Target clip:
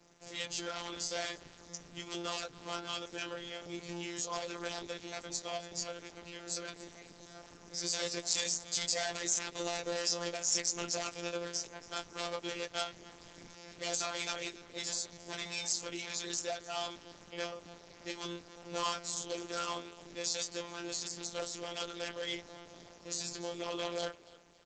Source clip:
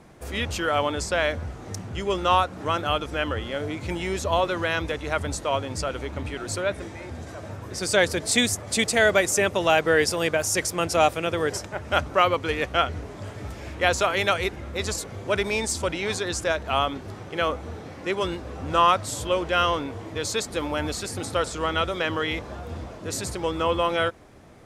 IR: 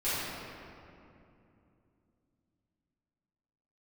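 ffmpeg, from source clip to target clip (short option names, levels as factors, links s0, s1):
-af "flanger=delay=17:depth=2:speed=2.3,equalizer=f=1200:t=o:w=1.1:g=-3.5,aresample=16000,volume=20,asoftclip=hard,volume=0.0501,aresample=44100,aecho=1:1:279|558|837:0.106|0.0392|0.0145,afreqshift=14,afftfilt=real='hypot(re,im)*cos(PI*b)':imag='0':win_size=1024:overlap=0.75,bass=f=250:g=-5,treble=f=4000:g=14,volume=0.596" -ar 48000 -c:a libopus -b:a 10k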